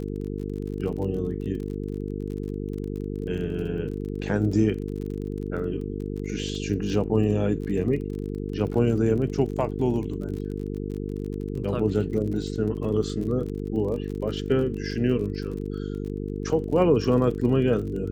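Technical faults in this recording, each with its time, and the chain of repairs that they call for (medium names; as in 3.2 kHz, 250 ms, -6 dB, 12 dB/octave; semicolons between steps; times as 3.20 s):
buzz 50 Hz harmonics 9 -31 dBFS
crackle 35 per s -34 dBFS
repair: de-click; de-hum 50 Hz, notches 9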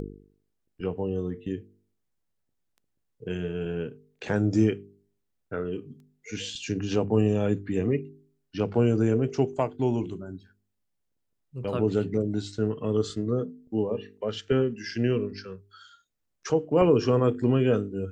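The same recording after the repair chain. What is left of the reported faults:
nothing left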